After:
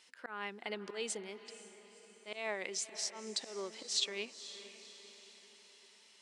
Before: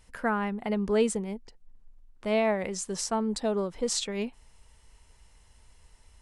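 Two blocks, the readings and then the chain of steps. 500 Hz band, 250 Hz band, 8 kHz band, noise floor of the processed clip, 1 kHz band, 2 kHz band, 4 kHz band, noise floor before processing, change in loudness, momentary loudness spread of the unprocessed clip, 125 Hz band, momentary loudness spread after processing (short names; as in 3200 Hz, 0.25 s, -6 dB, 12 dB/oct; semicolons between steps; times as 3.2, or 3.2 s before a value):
-15.0 dB, -21.0 dB, -5.5 dB, -63 dBFS, -14.5 dB, -6.5 dB, -0.5 dB, -59 dBFS, -10.5 dB, 10 LU, under -20 dB, 22 LU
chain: Chebyshev band-pass 170–3800 Hz, order 2; bell 360 Hz +9.5 dB 0.62 oct; auto swell 0.197 s; differentiator; in parallel at -2 dB: compressor, threshold -59 dBFS, peak gain reduction 20 dB; on the sum: vibrato 5.5 Hz 7.4 cents; diffused feedback echo 0.501 s, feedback 51%, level -13.5 dB; gain +7.5 dB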